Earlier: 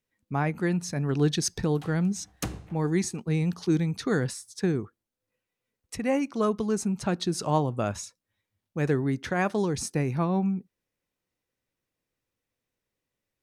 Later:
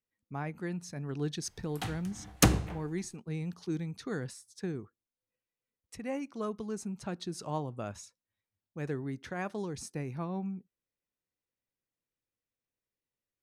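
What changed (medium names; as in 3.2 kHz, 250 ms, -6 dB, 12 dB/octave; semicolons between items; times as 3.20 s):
speech -10.5 dB; background +10.0 dB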